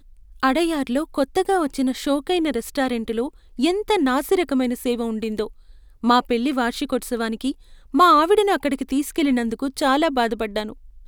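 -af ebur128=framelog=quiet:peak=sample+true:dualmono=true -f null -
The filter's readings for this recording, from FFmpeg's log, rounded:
Integrated loudness:
  I:         -18.2 LUFS
  Threshold: -28.5 LUFS
Loudness range:
  LRA:         3.5 LU
  Threshold: -38.3 LUFS
  LRA low:   -20.0 LUFS
  LRA high:  -16.5 LUFS
Sample peak:
  Peak:       -4.2 dBFS
True peak:
  Peak:       -4.2 dBFS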